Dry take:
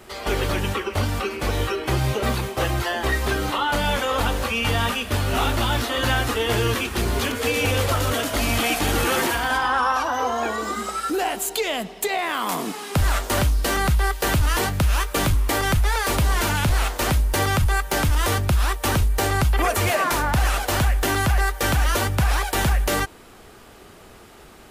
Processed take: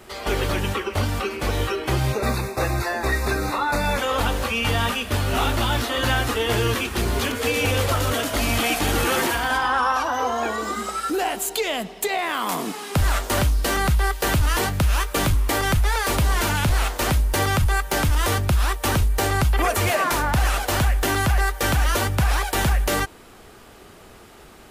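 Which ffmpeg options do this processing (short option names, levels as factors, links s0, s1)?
-filter_complex "[0:a]asettb=1/sr,asplit=3[s0][s1][s2];[s0]atrim=end=2.124[s3];[s1]atrim=start=2.12:end=3.98,asetpts=PTS-STARTPTS,afade=t=in:d=0.004:c=qsin,afade=t=out:st=1.856:d=0.004:c=qsin,asuperstop=centerf=3100:order=12:qfactor=4[s4];[s2]atrim=start=3.976[s5];[s3][s4]acrossfade=d=0.004:c1=hsin:c2=qsin[s6];[s6][s5]acrossfade=d=0.004:c1=qsin:c2=hsin"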